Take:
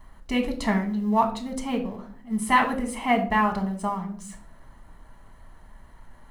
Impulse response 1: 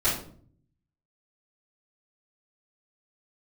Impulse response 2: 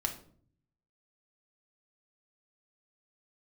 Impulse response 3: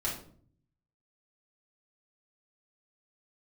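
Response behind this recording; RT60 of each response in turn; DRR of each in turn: 2; 0.50 s, 0.55 s, 0.55 s; -14.5 dB, 3.0 dB, -6.5 dB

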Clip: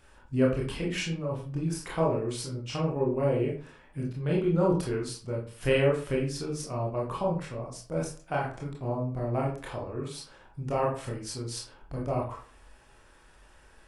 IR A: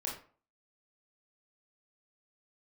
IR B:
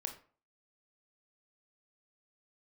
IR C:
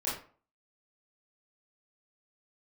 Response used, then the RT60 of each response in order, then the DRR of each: A; 0.45 s, 0.45 s, 0.45 s; -3.5 dB, 4.0 dB, -9.0 dB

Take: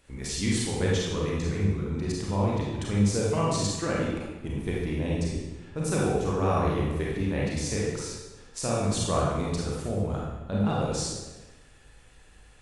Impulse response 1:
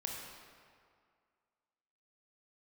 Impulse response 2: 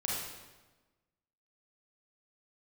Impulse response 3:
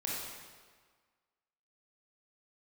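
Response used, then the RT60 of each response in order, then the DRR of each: 2; 2.1 s, 1.2 s, 1.6 s; -1.0 dB, -5.0 dB, -5.0 dB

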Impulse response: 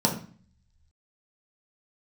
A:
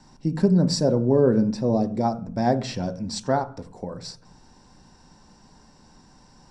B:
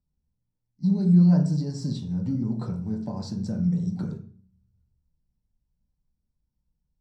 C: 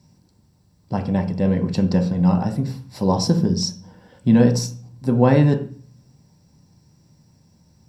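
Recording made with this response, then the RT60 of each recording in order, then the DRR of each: B; 0.45 s, 0.45 s, 0.45 s; 8.0 dB, -1.5 dB, 2.5 dB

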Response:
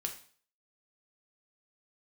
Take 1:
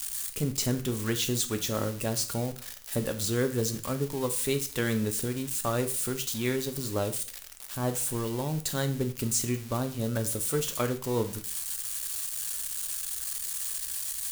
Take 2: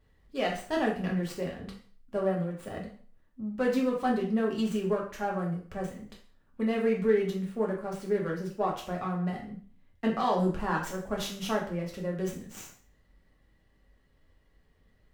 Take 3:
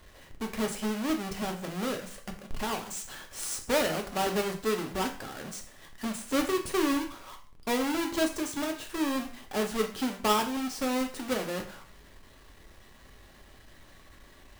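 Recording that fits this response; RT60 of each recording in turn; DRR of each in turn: 3; 0.45 s, 0.45 s, 0.45 s; 7.0 dB, -2.5 dB, 3.0 dB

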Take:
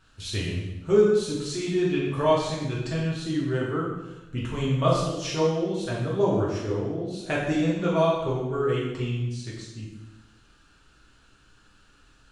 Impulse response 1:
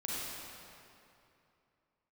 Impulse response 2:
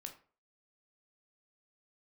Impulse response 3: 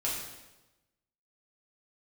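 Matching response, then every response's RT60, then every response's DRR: 3; 2.7 s, 0.40 s, 1.1 s; -6.5 dB, 4.0 dB, -6.5 dB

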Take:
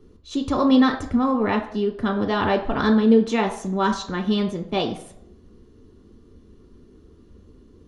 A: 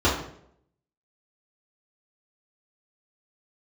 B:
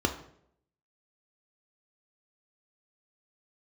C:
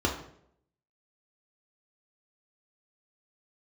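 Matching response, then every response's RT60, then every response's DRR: B; 0.70 s, 0.70 s, 0.70 s; -9.5 dB, 3.5 dB, -2.0 dB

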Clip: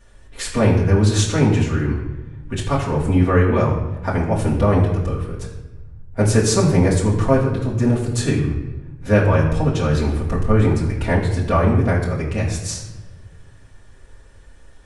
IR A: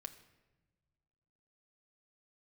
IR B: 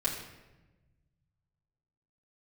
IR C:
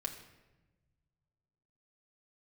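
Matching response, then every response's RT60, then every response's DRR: B; no single decay rate, 1.1 s, 1.1 s; 6.5 dB, -6.5 dB, 1.5 dB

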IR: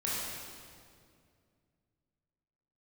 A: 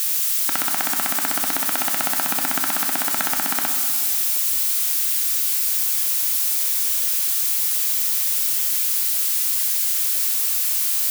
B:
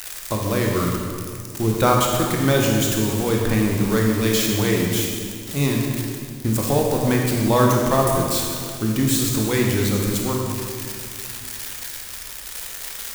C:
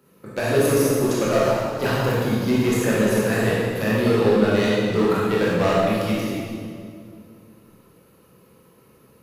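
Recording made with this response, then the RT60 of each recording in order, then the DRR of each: C; 2.3 s, 2.3 s, 2.2 s; 4.0 dB, -1.0 dB, -7.5 dB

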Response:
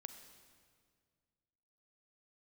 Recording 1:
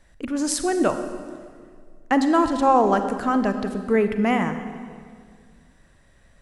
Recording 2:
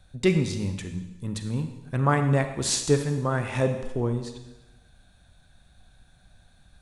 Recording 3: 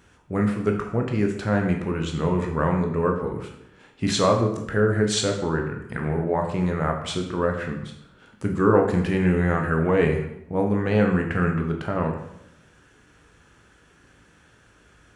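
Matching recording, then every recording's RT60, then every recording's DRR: 1; 2.0 s, 1.0 s, 0.75 s; 8.0 dB, 7.0 dB, 2.5 dB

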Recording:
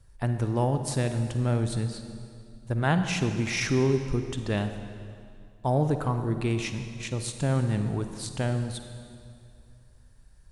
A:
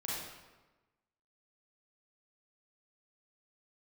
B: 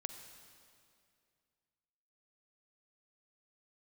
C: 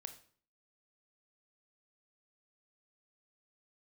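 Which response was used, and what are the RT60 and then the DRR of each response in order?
B; 1.2 s, 2.4 s, 0.50 s; -7.0 dB, 7.5 dB, 7.5 dB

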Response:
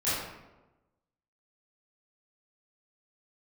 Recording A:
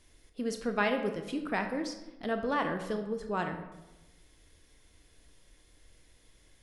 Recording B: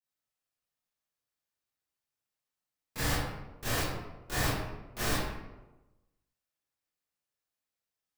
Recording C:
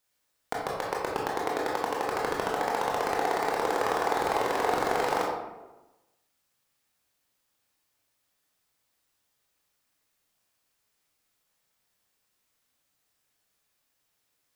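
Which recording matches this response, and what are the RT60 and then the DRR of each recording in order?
B; 1.1 s, 1.1 s, 1.1 s; 5.5 dB, -13.5 dB, -3.5 dB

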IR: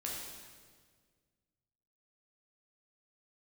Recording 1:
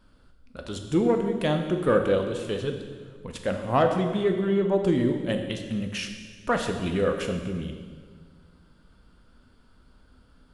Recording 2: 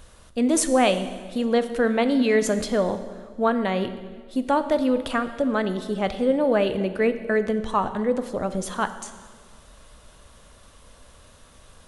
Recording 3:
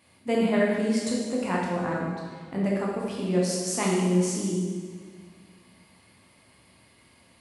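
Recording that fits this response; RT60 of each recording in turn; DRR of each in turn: 3; 1.7 s, 1.7 s, 1.7 s; 4.5 dB, 10.0 dB, -4.0 dB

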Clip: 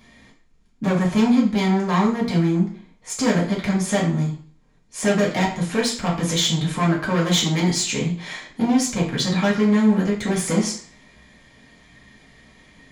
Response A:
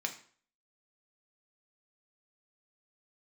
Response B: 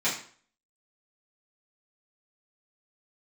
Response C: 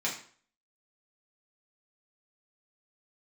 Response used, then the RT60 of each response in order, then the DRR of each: C; 0.50 s, 0.50 s, 0.50 s; 3.0 dB, -11.0 dB, -5.5 dB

